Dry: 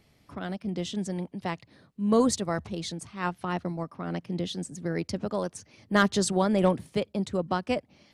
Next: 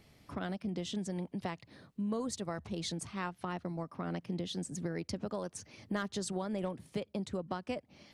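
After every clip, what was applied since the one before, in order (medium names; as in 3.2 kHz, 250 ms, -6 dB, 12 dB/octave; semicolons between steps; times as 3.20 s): compression 6:1, threshold -35 dBFS, peak gain reduction 17 dB; trim +1 dB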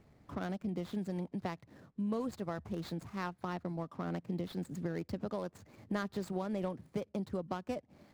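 median filter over 15 samples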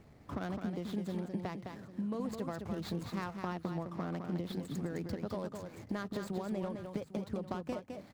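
compression, threshold -39 dBFS, peak gain reduction 8.5 dB; on a send: multi-tap echo 210/801 ms -6/-15.5 dB; on the sum: trim +4.5 dB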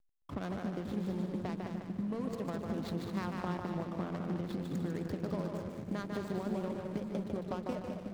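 two-band feedback delay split 320 Hz, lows 551 ms, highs 149 ms, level -4 dB; hysteresis with a dead band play -42.5 dBFS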